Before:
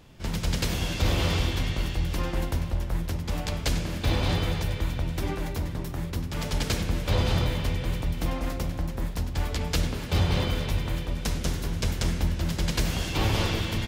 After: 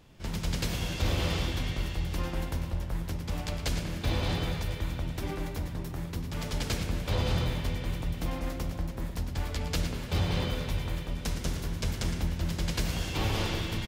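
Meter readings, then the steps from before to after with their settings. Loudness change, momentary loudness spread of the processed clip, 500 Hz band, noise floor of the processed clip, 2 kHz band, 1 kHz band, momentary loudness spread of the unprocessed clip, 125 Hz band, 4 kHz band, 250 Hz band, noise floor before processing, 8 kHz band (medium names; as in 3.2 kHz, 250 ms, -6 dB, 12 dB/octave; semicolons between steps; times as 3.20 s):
-4.0 dB, 6 LU, -4.0 dB, -38 dBFS, -4.0 dB, -4.0 dB, 6 LU, -4.0 dB, -4.0 dB, -4.0 dB, -34 dBFS, -4.0 dB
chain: delay 113 ms -10 dB; trim -4.5 dB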